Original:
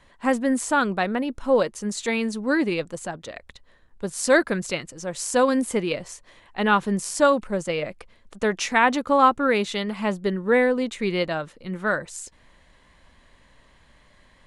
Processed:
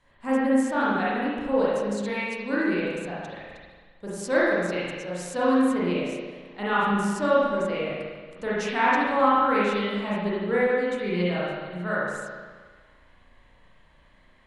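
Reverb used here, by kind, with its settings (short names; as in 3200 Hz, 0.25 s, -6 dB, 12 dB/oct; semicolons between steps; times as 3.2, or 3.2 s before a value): spring tank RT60 1.5 s, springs 34/45 ms, chirp 40 ms, DRR -8.5 dB; gain -11 dB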